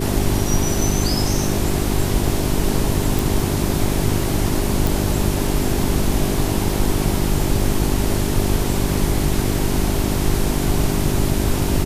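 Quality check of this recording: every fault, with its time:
hum 50 Hz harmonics 8 -23 dBFS
3.19 pop
4.87 pop

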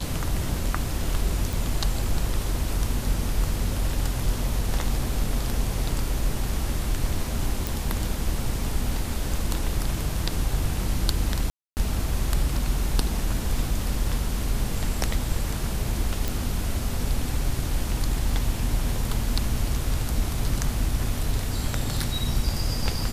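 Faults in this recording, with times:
1.53 pop
7.67 pop
11.5–11.77 gap 0.269 s
16.28 pop

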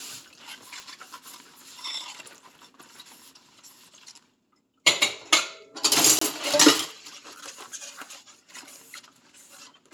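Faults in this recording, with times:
0.8 pop
6.19–6.21 gap 24 ms

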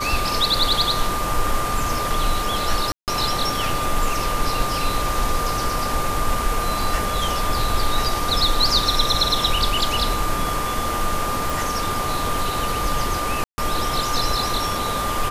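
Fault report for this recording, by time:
tone 1200 Hz -25 dBFS
2.92–3.08 gap 0.158 s
11.5 pop
13.44–13.58 gap 0.14 s

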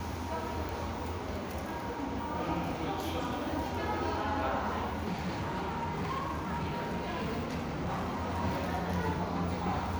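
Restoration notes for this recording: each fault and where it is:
0.69 pop
5.12–8.41 clipped -30.5 dBFS

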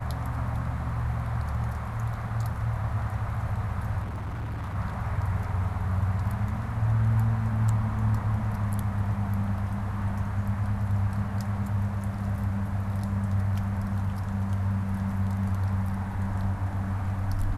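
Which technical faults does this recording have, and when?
4.02–4.76 clipped -30 dBFS

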